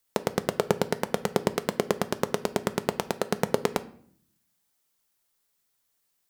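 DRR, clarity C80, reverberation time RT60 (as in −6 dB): 11.0 dB, 21.5 dB, 0.60 s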